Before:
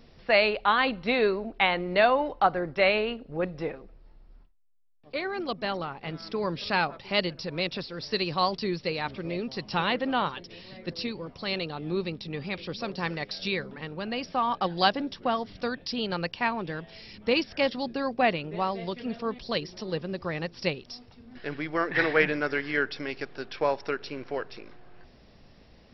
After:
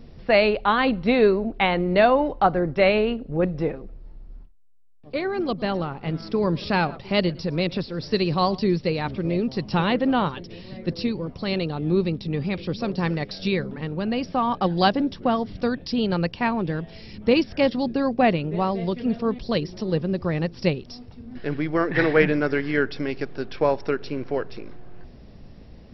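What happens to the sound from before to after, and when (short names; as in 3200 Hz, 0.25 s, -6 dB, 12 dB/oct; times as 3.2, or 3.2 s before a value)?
5.26–8.78 echo 0.112 s -22.5 dB
whole clip: low shelf 500 Hz +12 dB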